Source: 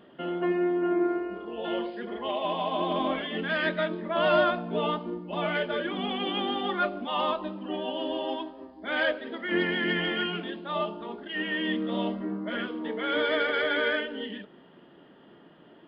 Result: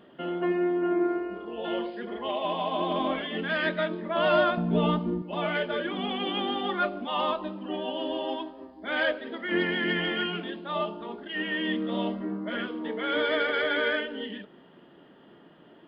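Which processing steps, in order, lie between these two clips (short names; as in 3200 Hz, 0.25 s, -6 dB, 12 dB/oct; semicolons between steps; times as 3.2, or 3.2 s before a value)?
4.57–5.22 tone controls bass +14 dB, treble 0 dB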